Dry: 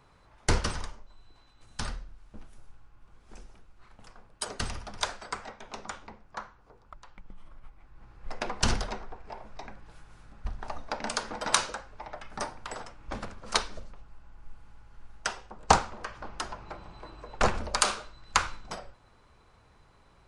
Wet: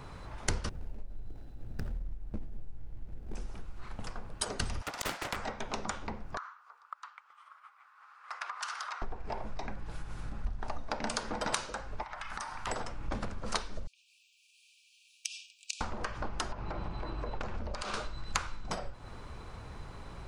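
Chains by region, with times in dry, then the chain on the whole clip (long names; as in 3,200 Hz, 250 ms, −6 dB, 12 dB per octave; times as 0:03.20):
0:00.69–0:03.35: running median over 41 samples + downward compressor 3 to 1, threshold −39 dBFS
0:04.82–0:05.36: Butterworth high-pass 570 Hz + compressor whose output falls as the input rises −35 dBFS, ratio −0.5 + highs frequency-modulated by the lows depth 0.77 ms
0:06.37–0:09.02: four-pole ladder high-pass 1,100 Hz, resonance 65% + downward compressor 3 to 1, threshold −46 dBFS
0:12.03–0:12.67: low shelf with overshoot 720 Hz −13 dB, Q 1.5 + downward compressor, threshold −47 dBFS
0:13.87–0:15.81: downward compressor 12 to 1, threshold −35 dBFS + linear-phase brick-wall high-pass 2,300 Hz
0:16.52–0:17.94: downward compressor, threshold −40 dBFS + high-frequency loss of the air 86 metres
whole clip: low-shelf EQ 350 Hz +5.5 dB; downward compressor 4 to 1, threshold −45 dBFS; level +11 dB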